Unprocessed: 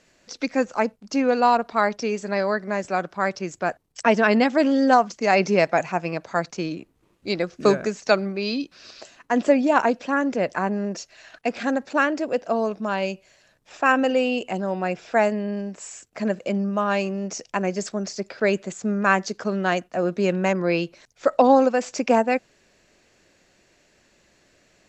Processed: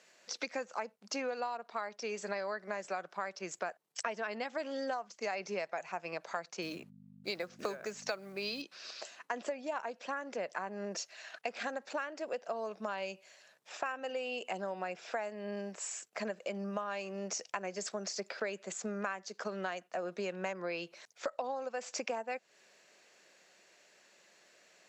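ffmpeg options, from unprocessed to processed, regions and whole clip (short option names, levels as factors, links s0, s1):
-filter_complex "[0:a]asettb=1/sr,asplit=3[s0][s1][s2];[s0]atrim=end=6.624[s3];[s1]atrim=start=6.62:end=8.62,asetpts=PTS-STARTPTS,afade=t=in:d=0.004:c=qsin,afade=t=out:st=1.996:d=0.004:c=qsin,agate=range=0.0501:threshold=0.00126:ratio=16:release=100:detection=peak,acrusher=bits=8:mode=log:mix=0:aa=0.000001,aeval=exprs='val(0)+0.0224*(sin(2*PI*50*n/s)+sin(2*PI*2*50*n/s)/2+sin(2*PI*3*50*n/s)/3+sin(2*PI*4*50*n/s)/4+sin(2*PI*5*50*n/s)/5)':c=same[s4];[s2]atrim=start=8.616[s5];[s3][s4]acrossfade=d=0.004:c1=hsin:c2=qsin[s6];[s6][s5]acrossfade=d=0.004:c1=qsin:c2=hsin,highpass=f=210:w=0.5412,highpass=f=210:w=1.3066,equalizer=f=270:w=1.5:g=-12.5,acompressor=threshold=0.0251:ratio=12,volume=0.794"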